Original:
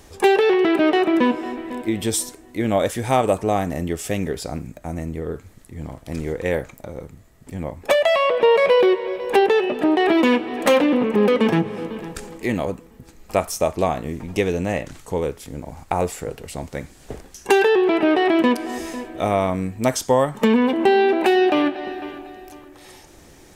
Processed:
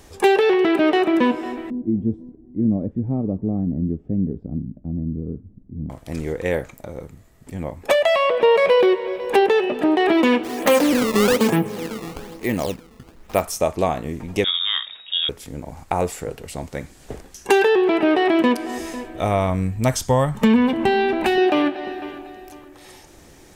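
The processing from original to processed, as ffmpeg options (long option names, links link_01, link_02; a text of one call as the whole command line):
ffmpeg -i in.wav -filter_complex "[0:a]asettb=1/sr,asplit=3[link_01][link_02][link_03];[link_01]atrim=end=1.704[link_04];[link_02]atrim=start=1.7:end=5.9,asetpts=PTS-STARTPTS,afade=type=in:duration=0.004:curve=qsin,afade=type=out:start_time=4.196:duration=0.004:curve=qsin,lowpass=frequency=230:width_type=q:width=2[link_05];[link_03]atrim=start=5.896[link_06];[link_04][link_05]acrossfade=duration=0.004:curve1=hsin:curve2=qsin[link_07];[link_07][link_06]acrossfade=duration=0.004:curve1=qsin:curve2=hsin,asplit=3[link_08][link_09][link_10];[link_08]afade=type=out:start_time=10.43:duration=0.02[link_11];[link_09]acrusher=samples=16:mix=1:aa=0.000001:lfo=1:lforange=25.6:lforate=1.1,afade=type=in:start_time=10.43:duration=0.02,afade=type=out:start_time=13.41:duration=0.02[link_12];[link_10]afade=type=in:start_time=13.41:duration=0.02[link_13];[link_11][link_12][link_13]amix=inputs=3:normalize=0,asettb=1/sr,asplit=3[link_14][link_15][link_16];[link_14]atrim=end=14.444[link_17];[link_15]atrim=start=14.44:end=15.29,asetpts=PTS-STARTPTS,afade=type=in:duration=0.004:curve=qsin,afade=type=out:start_time=0.846:duration=0.004:curve=qsin,lowpass=frequency=3200:width_type=q:width=0.5098,lowpass=frequency=3200:width_type=q:width=0.6013,lowpass=frequency=3200:width_type=q:width=0.9,lowpass=frequency=3200:width_type=q:width=2.563,afreqshift=-3800[link_18];[link_16]atrim=start=15.286[link_19];[link_17][link_18]acrossfade=duration=0.004:curve1=hsin:curve2=qsin[link_20];[link_20][link_19]acrossfade=duration=0.004:curve1=qsin:curve2=hsin,asettb=1/sr,asplit=3[link_21][link_22][link_23];[link_21]atrim=end=18.834[link_24];[link_22]atrim=start=18.83:end=21.38,asetpts=PTS-STARTPTS,afade=type=in:duration=0.004:curve=qsin,afade=type=out:start_time=2.546:duration=0.004:curve=qsin,asubboost=boost=11:cutoff=140[link_25];[link_23]atrim=start=21.376[link_26];[link_24][link_25]acrossfade=duration=0.004:curve1=hsin:curve2=qsin[link_27];[link_27][link_26]acrossfade=duration=0.004:curve1=qsin:curve2=hsin" out.wav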